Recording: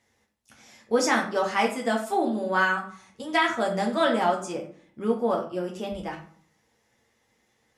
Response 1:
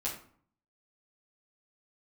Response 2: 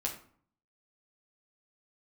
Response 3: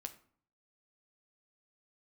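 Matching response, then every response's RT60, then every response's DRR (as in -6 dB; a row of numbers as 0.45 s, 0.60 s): 2; 0.55 s, 0.55 s, 0.55 s; -7.0 dB, -1.0 dB, 7.0 dB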